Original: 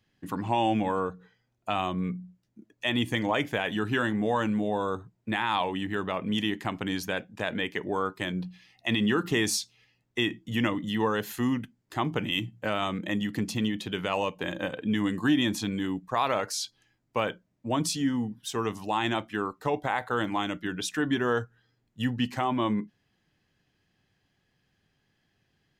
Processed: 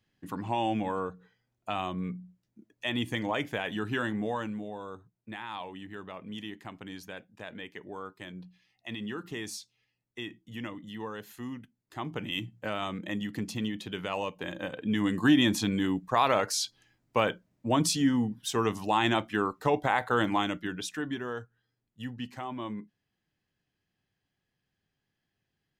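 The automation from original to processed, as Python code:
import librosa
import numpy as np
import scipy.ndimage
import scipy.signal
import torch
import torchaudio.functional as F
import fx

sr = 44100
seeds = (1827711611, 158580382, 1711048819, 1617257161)

y = fx.gain(x, sr, db=fx.line((4.19, -4.0), (4.75, -12.0), (11.62, -12.0), (12.37, -4.5), (14.63, -4.5), (15.28, 2.0), (20.34, 2.0), (21.31, -10.0)))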